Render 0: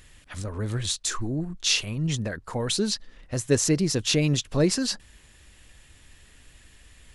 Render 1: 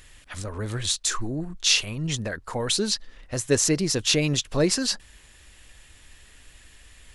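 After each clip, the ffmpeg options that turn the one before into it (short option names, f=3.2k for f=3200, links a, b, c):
-af "equalizer=f=150:t=o:w=2.7:g=-5.5,volume=3dB"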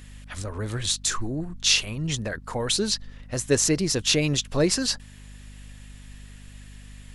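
-af "aeval=exprs='val(0)+0.00708*(sin(2*PI*50*n/s)+sin(2*PI*2*50*n/s)/2+sin(2*PI*3*50*n/s)/3+sin(2*PI*4*50*n/s)/4+sin(2*PI*5*50*n/s)/5)':c=same"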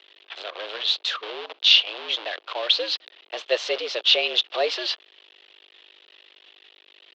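-af "acrusher=bits=6:dc=4:mix=0:aa=0.000001,aexciter=amount=4.9:drive=3.7:freq=2.7k,highpass=f=350:t=q:w=0.5412,highpass=f=350:t=q:w=1.307,lowpass=f=3.5k:t=q:w=0.5176,lowpass=f=3.5k:t=q:w=0.7071,lowpass=f=3.5k:t=q:w=1.932,afreqshift=100"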